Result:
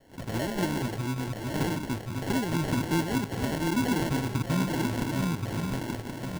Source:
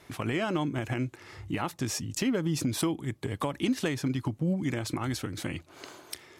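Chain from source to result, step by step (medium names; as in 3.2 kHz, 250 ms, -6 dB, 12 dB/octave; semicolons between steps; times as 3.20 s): backward echo that repeats 538 ms, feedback 60%, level -2 dB; three bands offset in time mids, lows, highs 80/350 ms, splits 490/3500 Hz; sample-and-hold 36×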